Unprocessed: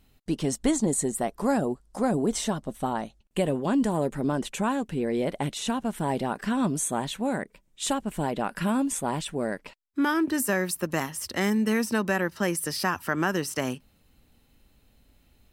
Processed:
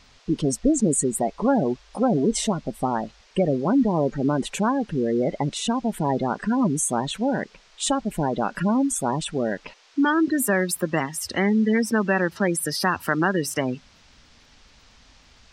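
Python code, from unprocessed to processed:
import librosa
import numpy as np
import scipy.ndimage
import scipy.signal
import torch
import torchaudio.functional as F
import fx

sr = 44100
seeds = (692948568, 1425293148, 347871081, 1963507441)

y = fx.spec_gate(x, sr, threshold_db=-20, keep='strong')
y = fx.dmg_noise_band(y, sr, seeds[0], low_hz=400.0, high_hz=5800.0, level_db=-61.0)
y = y * 10.0 ** (4.5 / 20.0)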